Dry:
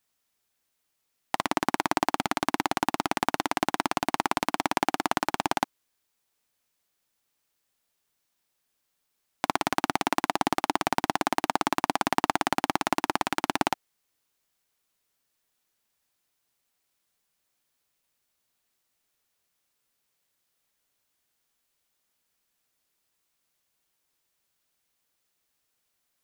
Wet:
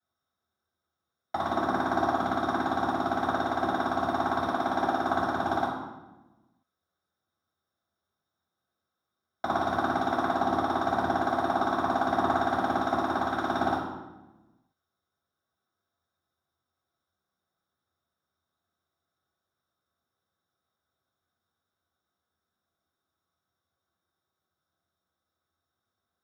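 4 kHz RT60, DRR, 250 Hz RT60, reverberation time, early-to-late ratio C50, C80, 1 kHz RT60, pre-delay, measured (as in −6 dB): 0.85 s, −11.5 dB, 1.5 s, 1.1 s, 1.5 dB, 4.5 dB, 0.95 s, 3 ms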